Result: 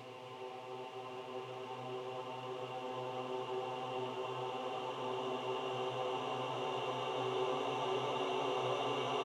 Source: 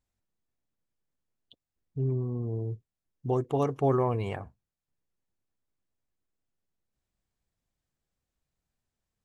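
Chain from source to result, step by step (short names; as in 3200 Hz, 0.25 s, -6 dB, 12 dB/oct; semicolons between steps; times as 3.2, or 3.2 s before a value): crackle 170/s -46 dBFS; band-pass sweep 1100 Hz -> 4400 Hz, 0.79–4.74; Paulstretch 23×, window 1.00 s, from 3.03; on a send: frequency-shifting echo 0.109 s, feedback 64%, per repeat +130 Hz, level -15 dB; on the sum: gain +14.5 dB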